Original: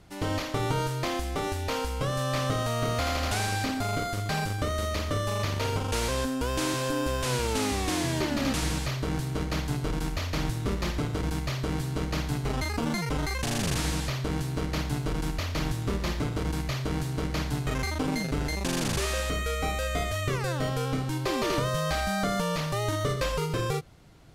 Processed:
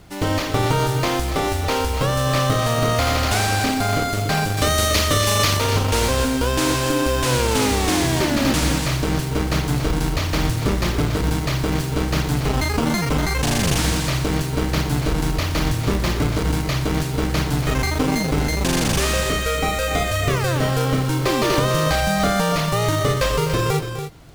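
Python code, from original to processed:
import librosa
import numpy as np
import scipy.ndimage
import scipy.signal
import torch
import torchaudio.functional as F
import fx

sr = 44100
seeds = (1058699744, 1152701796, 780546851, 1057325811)

y = fx.high_shelf(x, sr, hz=2200.0, db=11.0, at=(4.57, 5.57))
y = fx.quant_float(y, sr, bits=2)
y = fx.echo_multitap(y, sr, ms=(252, 285), db=(-13.5, -10.0))
y = y * librosa.db_to_amplitude(8.5)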